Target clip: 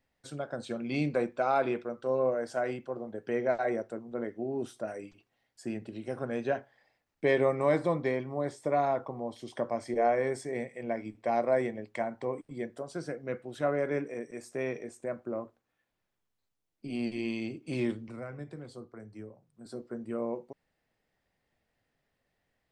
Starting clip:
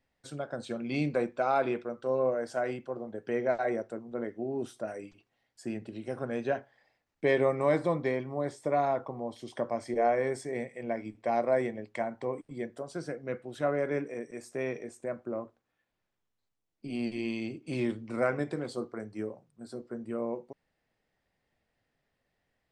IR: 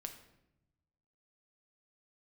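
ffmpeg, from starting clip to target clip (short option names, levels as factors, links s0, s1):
-filter_complex "[0:a]asettb=1/sr,asplit=3[s0][s1][s2];[s0]atrim=end=18.084[s3];[s1]atrim=start=18.08:end=19.66,asetpts=PTS-STARTPTS,afade=t=in:d=0.004:c=qsin,afade=t=out:st=1.576:d=0.004:c=qsin,acrossover=split=140[s4][s5];[s5]acompressor=threshold=0.00251:ratio=2[s6];[s4][s6]amix=inputs=2:normalize=0[s7];[s2]atrim=start=19.656[s8];[s3][s7]acrossfade=d=0.004:c1=hsin:c2=qsin[s9];[s9][s8]acrossfade=d=0.004:c1=qsin:c2=hsin"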